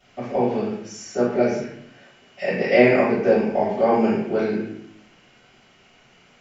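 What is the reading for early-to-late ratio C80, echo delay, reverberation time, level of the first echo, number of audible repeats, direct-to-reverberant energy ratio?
5.0 dB, no echo, 0.70 s, no echo, no echo, -13.0 dB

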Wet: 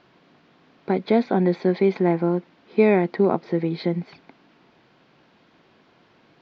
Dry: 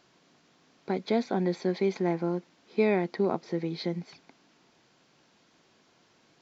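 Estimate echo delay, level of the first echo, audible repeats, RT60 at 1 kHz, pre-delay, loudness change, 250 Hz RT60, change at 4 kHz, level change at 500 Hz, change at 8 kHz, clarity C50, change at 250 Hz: no echo, no echo, no echo, no reverb, no reverb, +8.0 dB, no reverb, +1.5 dB, +7.5 dB, no reading, no reverb, +8.0 dB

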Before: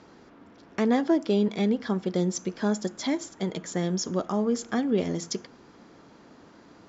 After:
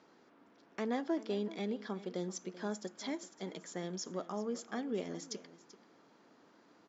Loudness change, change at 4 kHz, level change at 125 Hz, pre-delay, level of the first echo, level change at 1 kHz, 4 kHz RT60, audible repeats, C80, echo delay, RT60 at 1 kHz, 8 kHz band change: -12.5 dB, -10.5 dB, -15.5 dB, no reverb, -16.5 dB, -10.5 dB, no reverb, 1, no reverb, 386 ms, no reverb, no reading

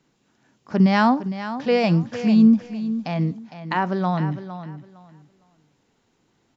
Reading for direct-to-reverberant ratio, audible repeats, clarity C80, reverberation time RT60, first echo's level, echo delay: no reverb, 2, no reverb, no reverb, -12.0 dB, 458 ms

